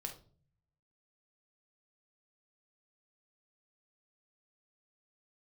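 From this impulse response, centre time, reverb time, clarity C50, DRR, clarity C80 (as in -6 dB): 14 ms, no single decay rate, 10.5 dB, 3.5 dB, 16.0 dB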